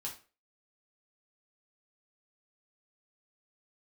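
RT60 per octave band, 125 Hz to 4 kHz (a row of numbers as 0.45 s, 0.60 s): 0.35 s, 0.35 s, 0.40 s, 0.35 s, 0.35 s, 0.30 s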